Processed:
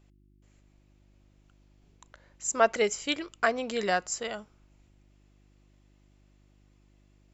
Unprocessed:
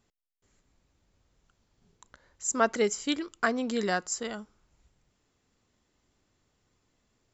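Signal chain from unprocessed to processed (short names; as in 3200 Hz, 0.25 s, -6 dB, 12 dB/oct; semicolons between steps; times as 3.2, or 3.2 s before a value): fifteen-band EQ 250 Hz -6 dB, 630 Hz +6 dB, 2500 Hz +7 dB; buzz 50 Hz, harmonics 7, -61 dBFS -5 dB/oct; gain -1 dB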